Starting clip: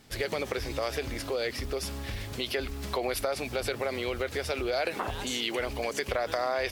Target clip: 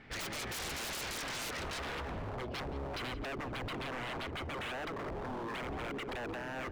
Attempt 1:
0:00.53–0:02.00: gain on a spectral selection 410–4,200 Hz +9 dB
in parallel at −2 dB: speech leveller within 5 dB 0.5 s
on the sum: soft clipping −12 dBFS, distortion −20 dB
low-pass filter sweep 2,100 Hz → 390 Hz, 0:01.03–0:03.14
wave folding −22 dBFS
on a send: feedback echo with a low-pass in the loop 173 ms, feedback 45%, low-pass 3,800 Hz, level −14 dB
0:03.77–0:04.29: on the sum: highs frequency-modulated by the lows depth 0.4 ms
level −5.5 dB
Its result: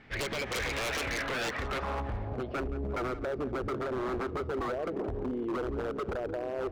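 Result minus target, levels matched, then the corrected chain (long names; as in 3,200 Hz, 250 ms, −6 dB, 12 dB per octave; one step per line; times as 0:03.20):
wave folding: distortion −13 dB
0:00.53–0:02.00: gain on a spectral selection 410–4,200 Hz +9 dB
in parallel at −2 dB: speech leveller within 5 dB 0.5 s
on the sum: soft clipping −12 dBFS, distortion −20 dB
low-pass filter sweep 2,100 Hz → 390 Hz, 0:01.03–0:03.14
wave folding −29.5 dBFS
on a send: feedback echo with a low-pass in the loop 173 ms, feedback 45%, low-pass 3,800 Hz, level −14 dB
0:03.77–0:04.29: on the sum: highs frequency-modulated by the lows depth 0.4 ms
level −5.5 dB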